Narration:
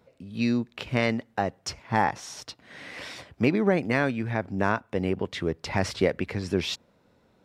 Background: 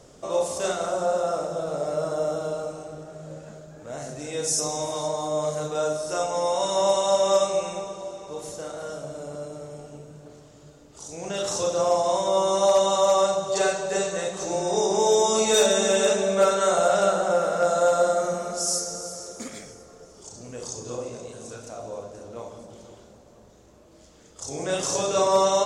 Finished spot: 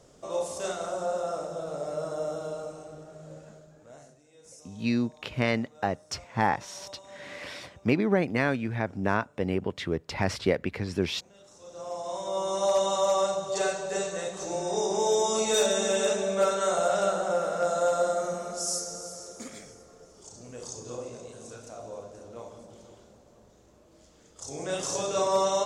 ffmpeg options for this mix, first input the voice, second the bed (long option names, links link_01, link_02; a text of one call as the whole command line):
ffmpeg -i stem1.wav -i stem2.wav -filter_complex "[0:a]adelay=4450,volume=-1.5dB[link_01];[1:a]volume=16dB,afade=type=out:start_time=3.39:duration=0.83:silence=0.0891251,afade=type=in:start_time=11.59:duration=1.2:silence=0.0794328[link_02];[link_01][link_02]amix=inputs=2:normalize=0" out.wav